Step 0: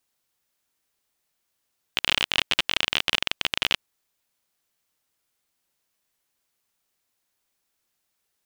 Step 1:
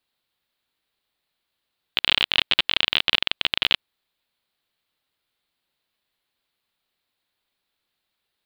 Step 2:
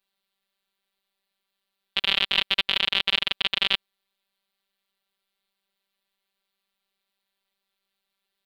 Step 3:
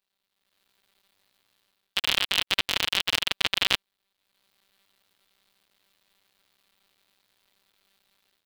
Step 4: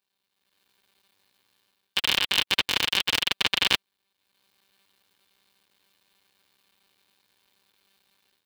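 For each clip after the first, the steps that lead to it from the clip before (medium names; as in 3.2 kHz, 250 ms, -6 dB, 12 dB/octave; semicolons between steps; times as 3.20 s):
resonant high shelf 4.9 kHz -7 dB, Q 3
robot voice 195 Hz
cycle switcher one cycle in 3, muted; level rider gain up to 14.5 dB; trim -1 dB
comb of notches 660 Hz; trim +2.5 dB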